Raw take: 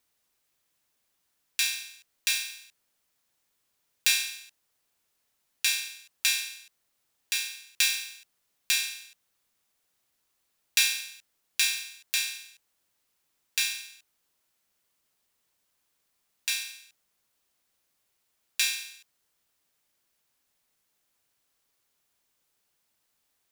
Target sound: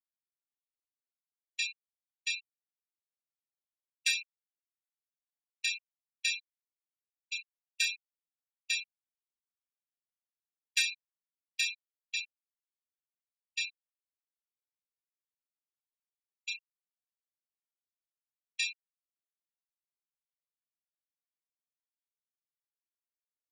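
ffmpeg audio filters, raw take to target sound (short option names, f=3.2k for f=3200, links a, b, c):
-af "afftfilt=real='re*gte(hypot(re,im),0.112)':imag='im*gte(hypot(re,im),0.112)':win_size=1024:overlap=0.75,agate=range=-7dB:threshold=-53dB:ratio=16:detection=peak,tiltshelf=f=1.4k:g=6"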